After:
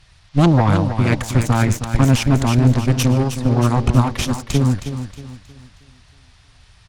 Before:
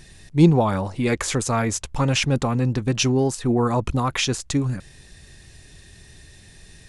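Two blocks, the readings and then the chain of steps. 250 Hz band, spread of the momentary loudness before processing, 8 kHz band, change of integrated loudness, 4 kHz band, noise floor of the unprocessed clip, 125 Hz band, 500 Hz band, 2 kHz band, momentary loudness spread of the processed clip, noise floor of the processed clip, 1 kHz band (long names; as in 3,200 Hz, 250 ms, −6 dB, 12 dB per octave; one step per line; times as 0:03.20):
+4.0 dB, 7 LU, −1.0 dB, +4.5 dB, −0.5 dB, −48 dBFS, +7.5 dB, +0.5 dB, +2.0 dB, 9 LU, −51 dBFS, +3.5 dB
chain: low shelf with overshoot 150 Hz +9 dB, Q 1.5
harmonic generator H 6 −11 dB, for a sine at −3 dBFS
noise in a band 600–5,300 Hz −45 dBFS
on a send: repeating echo 316 ms, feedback 49%, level −7 dB
on the sum: expander for the loud parts 1.5 to 1, over −34 dBFS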